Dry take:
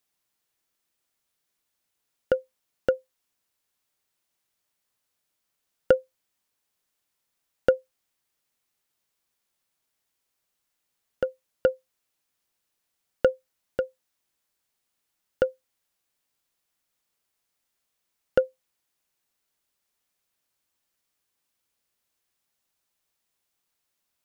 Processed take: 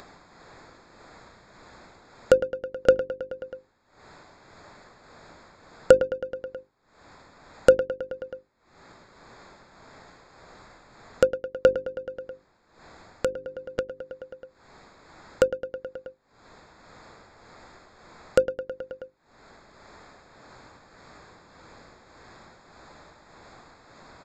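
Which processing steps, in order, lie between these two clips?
adaptive Wiener filter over 15 samples
downsampling to 16,000 Hz
mains-hum notches 50/100/150/200/250/300/350/400 Hz
in parallel at +2.5 dB: brickwall limiter −14 dBFS, peak gain reduction 8 dB
on the sum: amplitude tremolo 1.7 Hz, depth 74%
on a send: repeating echo 107 ms, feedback 58%, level −12 dB
on the sum: upward compression, threshold −24 dBFS
level +1 dB

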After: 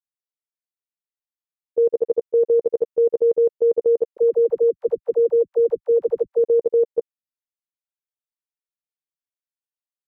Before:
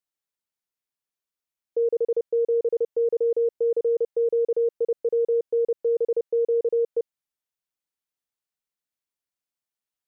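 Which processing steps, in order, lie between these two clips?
output level in coarse steps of 22 dB
0:04.17–0:06.44: all-pass dispersion lows, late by 68 ms, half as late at 420 Hz
level +7 dB

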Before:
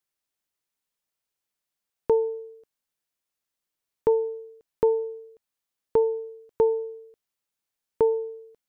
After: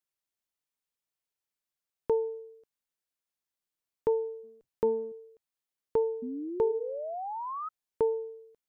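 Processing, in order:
0:04.43–0:05.12: sub-octave generator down 1 octave, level −6 dB
0:06.22–0:07.69: sound drawn into the spectrogram rise 240–1,300 Hz −30 dBFS
level −6 dB

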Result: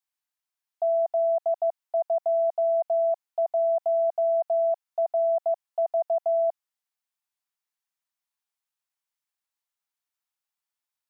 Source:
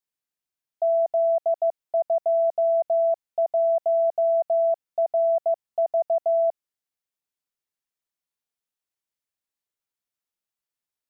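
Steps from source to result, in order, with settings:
low shelf with overshoot 610 Hz −9 dB, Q 1.5

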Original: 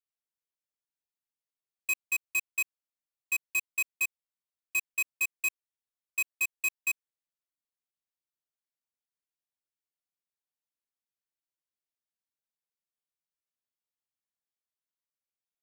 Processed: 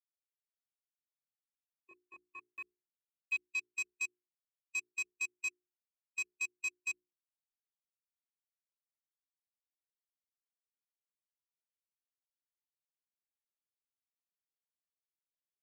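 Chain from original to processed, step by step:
spectral dynamics exaggerated over time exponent 1.5
low-pass filter sweep 240 Hz → 5,900 Hz, 0:01.11–0:03.75
0:02.54–0:03.50: centre clipping without the shift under −49.5 dBFS
mains-hum notches 60/120/180/240/300/360/420 Hz
level −8 dB

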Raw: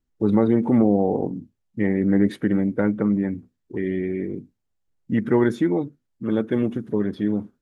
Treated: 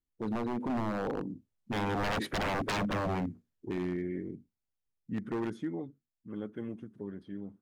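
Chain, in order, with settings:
source passing by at 0:02.53, 15 m/s, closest 6.3 metres
wave folding −28.5 dBFS
level +2 dB

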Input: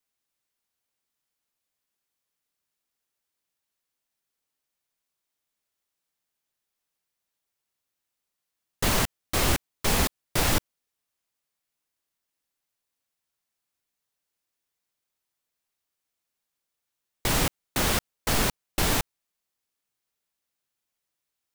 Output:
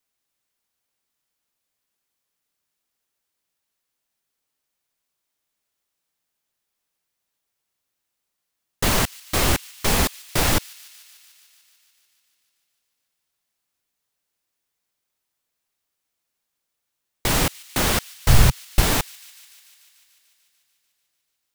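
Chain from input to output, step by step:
0:18.13–0:18.81: low shelf with overshoot 170 Hz +11.5 dB, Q 1.5
delay with a high-pass on its return 147 ms, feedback 76%, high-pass 2,700 Hz, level −20 dB
level +4 dB

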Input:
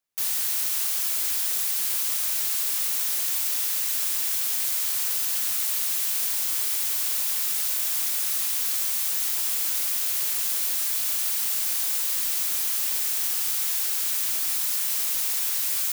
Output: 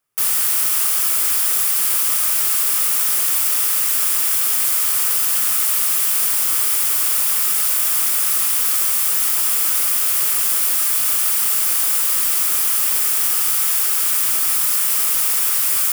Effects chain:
thirty-one-band graphic EQ 125 Hz +11 dB, 400 Hz +5 dB, 1,250 Hz +8 dB, 4,000 Hz −7 dB, 6,300 Hz −4 dB, 10,000 Hz +3 dB
level +8 dB

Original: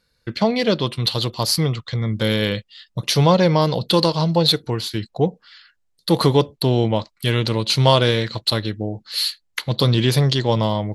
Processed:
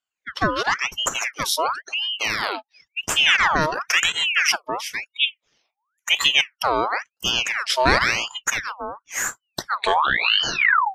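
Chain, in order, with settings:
turntable brake at the end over 1.48 s
noise reduction from a noise print of the clip's start 18 dB
ring modulator whose carrier an LFO sweeps 1,900 Hz, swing 60%, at 0.96 Hz

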